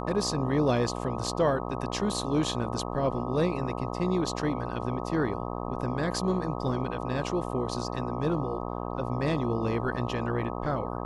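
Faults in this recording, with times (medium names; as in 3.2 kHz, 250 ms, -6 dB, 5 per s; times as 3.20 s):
buzz 60 Hz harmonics 21 -34 dBFS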